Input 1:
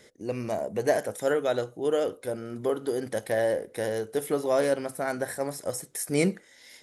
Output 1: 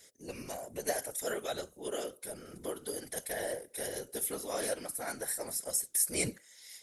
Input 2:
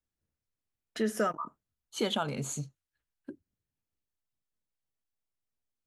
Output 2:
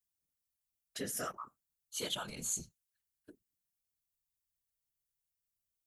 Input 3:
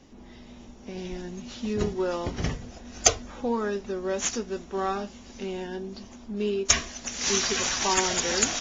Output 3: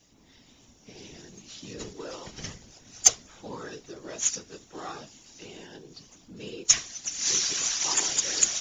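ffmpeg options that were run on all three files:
-af "afftfilt=real='hypot(re,im)*cos(2*PI*random(0))':imag='hypot(re,im)*sin(2*PI*random(1))':win_size=512:overlap=0.75,crystalizer=i=6:c=0,volume=-7dB"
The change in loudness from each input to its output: -7.0, -5.5, +3.0 LU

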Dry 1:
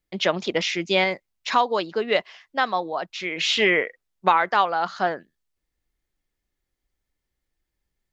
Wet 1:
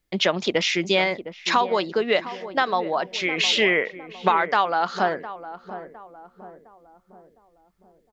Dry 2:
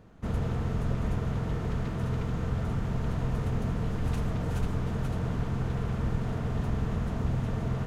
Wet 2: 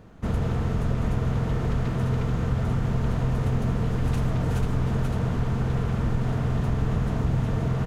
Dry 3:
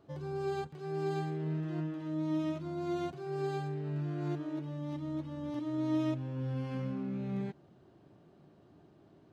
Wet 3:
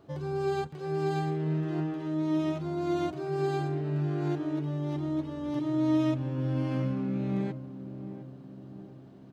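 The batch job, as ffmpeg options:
-filter_complex "[0:a]acompressor=threshold=-26dB:ratio=2,asplit=2[a][b];[b]adelay=709,lowpass=f=900:p=1,volume=-11.5dB,asplit=2[c][d];[d]adelay=709,lowpass=f=900:p=1,volume=0.53,asplit=2[e][f];[f]adelay=709,lowpass=f=900:p=1,volume=0.53,asplit=2[g][h];[h]adelay=709,lowpass=f=900:p=1,volume=0.53,asplit=2[i][j];[j]adelay=709,lowpass=f=900:p=1,volume=0.53,asplit=2[k][l];[l]adelay=709,lowpass=f=900:p=1,volume=0.53[m];[a][c][e][g][i][k][m]amix=inputs=7:normalize=0,volume=5.5dB"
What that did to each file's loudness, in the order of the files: +0.5, +5.0, +5.5 LU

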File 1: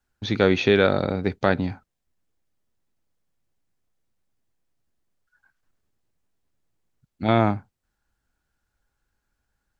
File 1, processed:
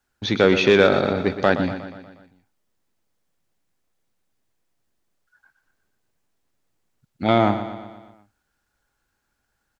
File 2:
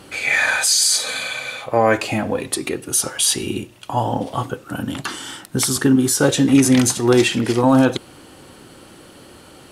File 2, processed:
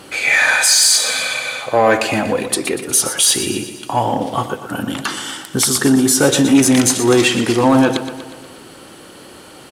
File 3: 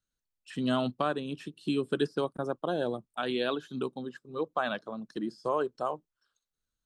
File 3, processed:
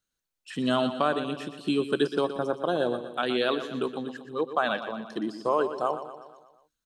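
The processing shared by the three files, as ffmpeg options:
-af "acontrast=51,lowshelf=f=150:g=-8.5,aecho=1:1:120|240|360|480|600|720:0.282|0.158|0.0884|0.0495|0.0277|0.0155,volume=-1dB"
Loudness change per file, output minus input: +3.0, +3.5, +4.5 LU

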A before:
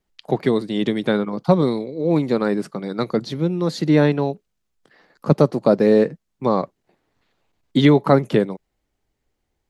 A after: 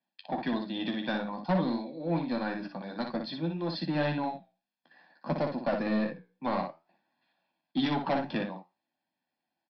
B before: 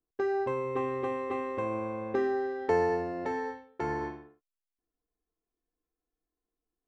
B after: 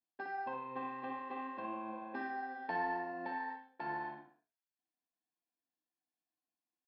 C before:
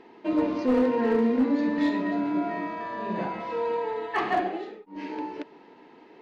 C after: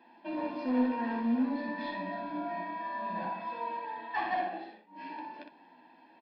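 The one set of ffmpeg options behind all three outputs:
-af "highpass=f=200:w=0.5412,highpass=f=200:w=1.3066,aecho=1:1:1.2:0.87,aresample=11025,asoftclip=type=tanh:threshold=-14dB,aresample=44100,flanger=delay=8.1:depth=8.9:regen=75:speed=0.56:shape=triangular,aecho=1:1:12|60:0.447|0.531,volume=-5dB"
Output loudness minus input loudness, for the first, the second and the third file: -13.0, -9.5, -7.5 LU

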